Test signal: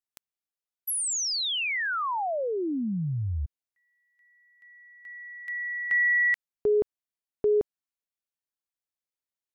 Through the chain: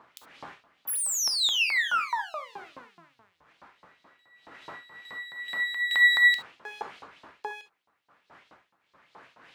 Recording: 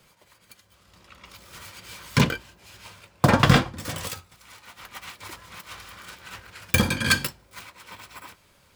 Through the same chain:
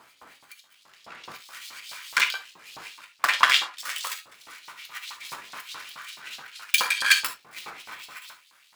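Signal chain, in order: partial rectifier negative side -12 dB; wind noise 110 Hz -27 dBFS; LFO high-pass saw up 4.7 Hz 950–4600 Hz; gated-style reverb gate 90 ms flat, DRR 7.5 dB; trim +2.5 dB

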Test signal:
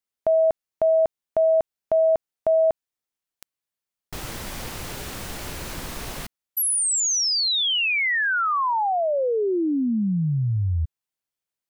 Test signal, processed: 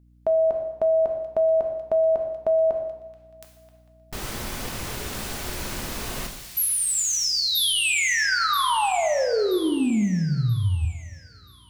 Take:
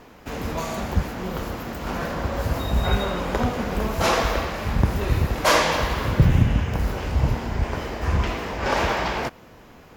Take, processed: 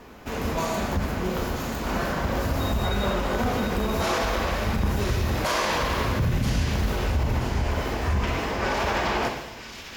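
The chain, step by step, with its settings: two-slope reverb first 0.91 s, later 2.4 s, from -19 dB, DRR 3 dB; peak limiter -16 dBFS; hum 60 Hz, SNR 31 dB; on a send: feedback echo behind a high-pass 980 ms, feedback 37%, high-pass 2.9 kHz, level -5 dB

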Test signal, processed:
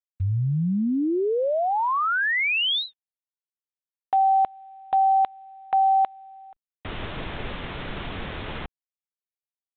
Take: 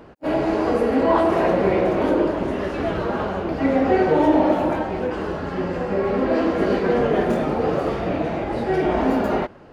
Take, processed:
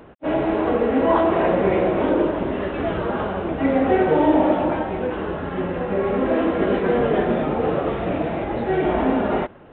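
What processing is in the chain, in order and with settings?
G.726 40 kbps 8 kHz

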